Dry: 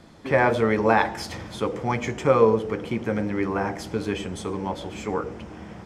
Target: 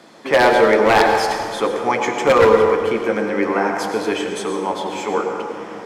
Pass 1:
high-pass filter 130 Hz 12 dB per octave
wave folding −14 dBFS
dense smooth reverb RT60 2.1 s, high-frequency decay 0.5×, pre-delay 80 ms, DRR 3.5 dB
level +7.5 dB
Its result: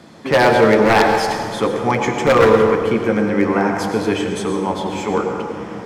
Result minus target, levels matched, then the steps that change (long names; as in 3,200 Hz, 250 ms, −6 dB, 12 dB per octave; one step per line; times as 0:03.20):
125 Hz band +8.0 dB
change: high-pass filter 330 Hz 12 dB per octave